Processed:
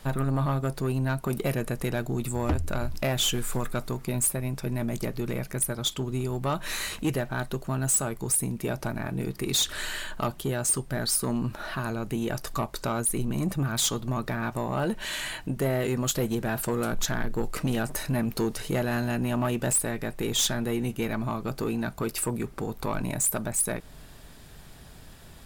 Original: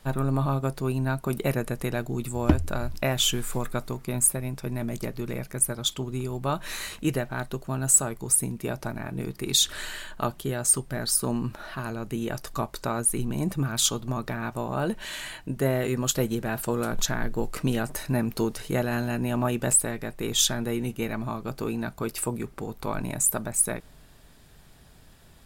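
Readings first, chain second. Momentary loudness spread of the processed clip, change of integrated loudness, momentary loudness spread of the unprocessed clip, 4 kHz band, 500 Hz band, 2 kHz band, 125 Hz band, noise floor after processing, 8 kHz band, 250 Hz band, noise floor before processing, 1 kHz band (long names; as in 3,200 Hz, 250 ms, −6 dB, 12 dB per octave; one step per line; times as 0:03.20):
7 LU, −1.5 dB, 10 LU, −1.5 dB, −0.5 dB, +0.5 dB, 0.0 dB, −47 dBFS, −3.0 dB, −0.5 dB, −52 dBFS, −0.5 dB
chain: in parallel at −1 dB: downward compressor, threshold −37 dBFS, peak gain reduction 22 dB
on the sum: soft clipping −19.5 dBFS, distortion −12 dB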